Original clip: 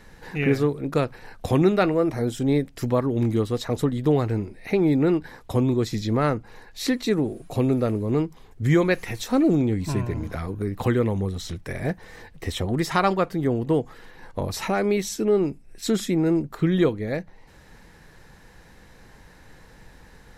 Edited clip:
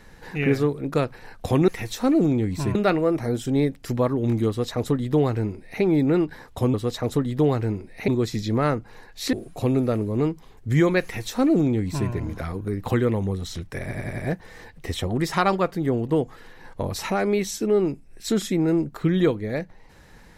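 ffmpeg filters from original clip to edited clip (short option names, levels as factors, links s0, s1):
-filter_complex "[0:a]asplit=10[s0][s1][s2][s3][s4][s5][s6][s7][s8][s9];[s0]atrim=end=1.682[s10];[s1]atrim=start=8.968:end=10.042[s11];[s2]atrim=start=1.678:end=5.672[s12];[s3]atrim=start=3.408:end=4.752[s13];[s4]atrim=start=5.668:end=6.922[s14];[s5]atrim=start=7.268:end=11.852[s15];[s6]atrim=start=11.758:end=11.852[s16];[s7]atrim=start=11.758:end=11.852[s17];[s8]atrim=start=11.758:end=11.852[s18];[s9]atrim=start=11.758[s19];[s10][s11]acrossfade=d=0.004:c1=hsin:c2=hsin[s20];[s20][s12]acrossfade=d=0.004:c1=hsin:c2=hsin[s21];[s21][s13]acrossfade=d=0.004:c1=hsin:c2=hsin[s22];[s22][s14]acrossfade=d=0.004:c1=hsin:c2=hsin[s23];[s23][s15]acrossfade=d=0.004:c1=hsin:c2=hsin[s24];[s24][s16]acrossfade=d=0.004:c1=hsin:c2=hsin[s25];[s25][s17]acrossfade=d=0.004:c1=hsin:c2=hsin[s26];[s26][s18]acrossfade=d=0.004:c1=hsin:c2=hsin[s27];[s27][s19]acrossfade=d=0.004:c1=hsin:c2=hsin"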